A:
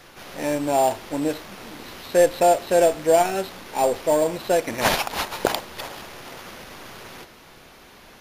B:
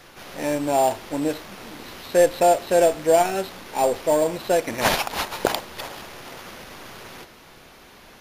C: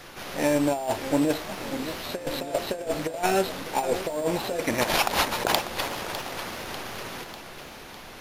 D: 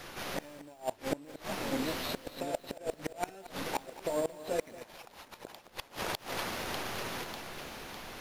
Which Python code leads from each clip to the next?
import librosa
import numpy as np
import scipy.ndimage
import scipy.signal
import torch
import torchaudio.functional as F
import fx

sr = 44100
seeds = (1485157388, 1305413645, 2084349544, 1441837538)

y1 = x
y2 = fx.over_compress(y1, sr, threshold_db=-23.0, ratio=-0.5)
y2 = fx.echo_warbled(y2, sr, ms=598, feedback_pct=58, rate_hz=2.8, cents=154, wet_db=-12.0)
y2 = y2 * 10.0 ** (-1.0 / 20.0)
y3 = fx.gate_flip(y2, sr, shuts_db=-17.0, range_db=-26)
y3 = fx.echo_crushed(y3, sr, ms=226, feedback_pct=35, bits=8, wet_db=-15)
y3 = y3 * 10.0 ** (-2.0 / 20.0)